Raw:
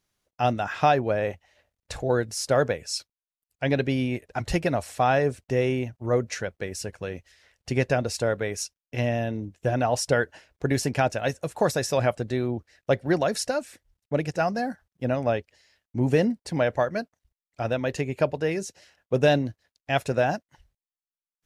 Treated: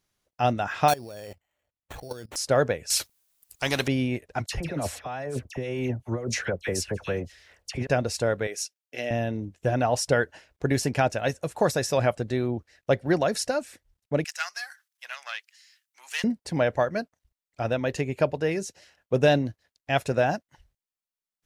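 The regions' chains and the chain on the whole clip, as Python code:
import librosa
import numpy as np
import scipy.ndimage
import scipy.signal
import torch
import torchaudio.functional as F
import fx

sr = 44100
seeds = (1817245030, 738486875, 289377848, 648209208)

y = fx.chain(x, sr, fx.level_steps(step_db=20),
    fx.sample_hold(seeds[0], rate_hz=5000.0, jitter_pct=0), at=(0.88, 2.36))
y = fx.chain(y, sr, fx.high_shelf(hz=5100.0, db=10.5),
    fx.spectral_comp(ratio=2.0), at=(2.9, 3.88))
y = fx.chain(y, sr, fx.over_compress(threshold_db=-29.0, ratio=-1.0),
    fx.dispersion(late='lows', ms=70.0, hz=1700.0), at=(4.46, 7.87))
y = fx.chain(y, sr, fx.highpass(hz=420.0, slope=12),
    fx.peak_eq(hz=990.0, db=-14.5, octaves=0.52), at=(8.47, 9.11))
y = fx.chain(y, sr, fx.self_delay(depth_ms=0.08),
    fx.highpass(hz=1300.0, slope=24),
    fx.high_shelf(hz=3600.0, db=9.5), at=(14.24, 16.24))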